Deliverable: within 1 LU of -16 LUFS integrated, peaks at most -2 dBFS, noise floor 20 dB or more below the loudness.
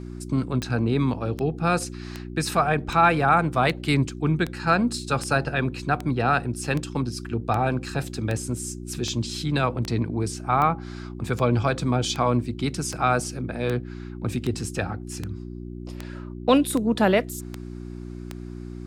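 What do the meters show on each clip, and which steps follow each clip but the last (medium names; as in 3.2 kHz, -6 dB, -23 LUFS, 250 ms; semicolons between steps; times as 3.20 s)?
clicks found 24; hum 60 Hz; highest harmonic 360 Hz; hum level -33 dBFS; loudness -24.5 LUFS; peak level -6.0 dBFS; loudness target -16.0 LUFS
-> de-click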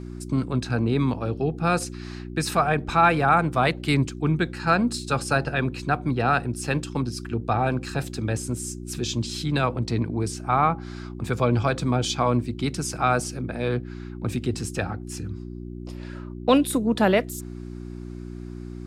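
clicks found 0; hum 60 Hz; highest harmonic 360 Hz; hum level -33 dBFS
-> de-hum 60 Hz, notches 6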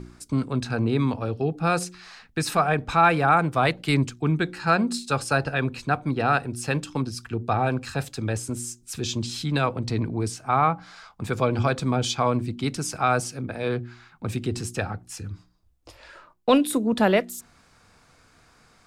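hum not found; loudness -25.0 LUFS; peak level -6.0 dBFS; loudness target -16.0 LUFS
-> trim +9 dB; peak limiter -2 dBFS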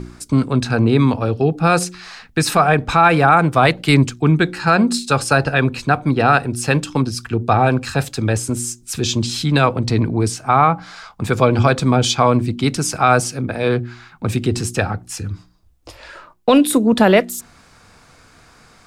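loudness -16.5 LUFS; peak level -2.0 dBFS; noise floor -49 dBFS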